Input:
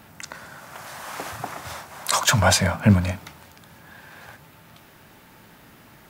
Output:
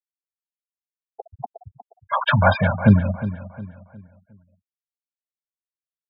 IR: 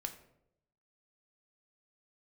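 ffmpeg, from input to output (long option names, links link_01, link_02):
-filter_complex "[0:a]acrossover=split=3700[link_01][link_02];[link_02]acompressor=threshold=-43dB:ratio=4:attack=1:release=60[link_03];[link_01][link_03]amix=inputs=2:normalize=0,asplit=2[link_04][link_05];[link_05]adelay=180,highpass=300,lowpass=3400,asoftclip=type=hard:threshold=-14dB,volume=-12dB[link_06];[link_04][link_06]amix=inputs=2:normalize=0,afftfilt=real='re*gte(hypot(re,im),0.126)':imag='im*gte(hypot(re,im),0.126)':win_size=1024:overlap=0.75,asplit=2[link_07][link_08];[link_08]adelay=359,lowpass=frequency=3300:poles=1,volume=-13.5dB,asplit=2[link_09][link_10];[link_10]adelay=359,lowpass=frequency=3300:poles=1,volume=0.38,asplit=2[link_11][link_12];[link_12]adelay=359,lowpass=frequency=3300:poles=1,volume=0.38,asplit=2[link_13][link_14];[link_14]adelay=359,lowpass=frequency=3300:poles=1,volume=0.38[link_15];[link_09][link_11][link_13][link_15]amix=inputs=4:normalize=0[link_16];[link_07][link_16]amix=inputs=2:normalize=0,volume=2.5dB"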